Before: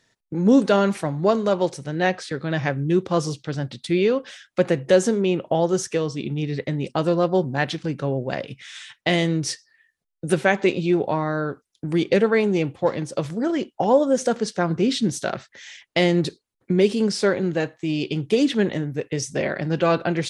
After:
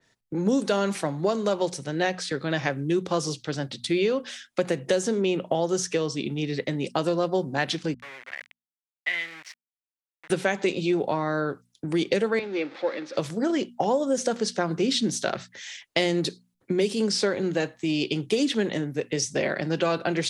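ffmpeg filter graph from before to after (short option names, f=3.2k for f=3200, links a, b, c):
-filter_complex "[0:a]asettb=1/sr,asplit=3[a][b][c];[a]atrim=end=7.944[d];[b]atrim=start=7.94:end=10.3,asetpts=PTS-STARTPTS,afade=t=in:d=0.004:c=qsin,afade=t=out:st=2.356:d=0.004:c=qsin,aeval=exprs='val(0)*gte(abs(val(0)),0.0596)':c=same,bandpass=f=2k:t=q:w=4[e];[c]atrim=start=10.296[f];[d][e]acrossfade=d=0.004:c1=hsin:c2=qsin[g];[g][f]acrossfade=d=0.004:c1=qsin:c2=hsin,asettb=1/sr,asplit=3[h][i][j];[h]atrim=end=12.394[k];[i]atrim=start=12.39:end=13.17,asetpts=PTS-STARTPTS,afade=t=in:d=0.004:c=qsin,afade=t=out:st=0.776:d=0.004:c=qsin,aeval=exprs='val(0)+0.5*0.0224*sgn(val(0))':c=same,highpass=f=330:w=0.5412,highpass=f=330:w=1.3066,equalizer=f=410:t=q:w=4:g=-9,equalizer=f=700:t=q:w=4:g=-9,equalizer=f=1k:t=q:w=4:g=-9,equalizer=f=3k:t=q:w=4:g=-9,lowpass=f=3.8k:w=0.5412,lowpass=f=3.8k:w=1.3066[l];[j]atrim=start=13.166[m];[k][l]acrossfade=d=0.004:c1=hsin:c2=qsin[n];[n][m]acrossfade=d=0.004:c1=qsin:c2=hsin,bandreject=f=60:t=h:w=6,bandreject=f=120:t=h:w=6,bandreject=f=180:t=h:w=6,bandreject=f=240:t=h:w=6,acrossover=split=180|6600[o][p][q];[o]acompressor=threshold=-42dB:ratio=4[r];[p]acompressor=threshold=-21dB:ratio=4[s];[q]acompressor=threshold=-45dB:ratio=4[t];[r][s][t]amix=inputs=3:normalize=0,adynamicequalizer=threshold=0.00631:dfrequency=3000:dqfactor=0.7:tfrequency=3000:tqfactor=0.7:attack=5:release=100:ratio=0.375:range=2.5:mode=boostabove:tftype=highshelf"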